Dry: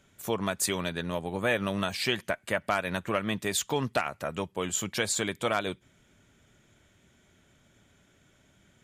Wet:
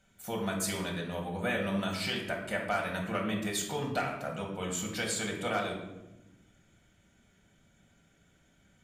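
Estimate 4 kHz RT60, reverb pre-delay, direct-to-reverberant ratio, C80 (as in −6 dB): 0.60 s, 3 ms, −0.5 dB, 7.5 dB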